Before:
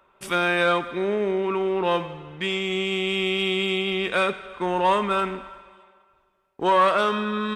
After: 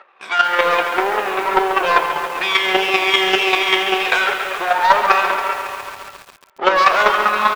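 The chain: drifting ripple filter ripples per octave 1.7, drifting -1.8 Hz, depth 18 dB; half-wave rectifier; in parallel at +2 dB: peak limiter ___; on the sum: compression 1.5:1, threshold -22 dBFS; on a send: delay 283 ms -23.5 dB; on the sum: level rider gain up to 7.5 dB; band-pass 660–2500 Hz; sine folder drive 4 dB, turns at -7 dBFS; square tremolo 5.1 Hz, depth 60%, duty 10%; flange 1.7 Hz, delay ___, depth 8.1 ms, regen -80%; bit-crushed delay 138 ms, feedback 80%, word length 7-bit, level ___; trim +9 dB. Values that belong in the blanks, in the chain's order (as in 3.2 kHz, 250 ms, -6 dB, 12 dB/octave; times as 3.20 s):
-12 dBFS, 9.3 ms, -9 dB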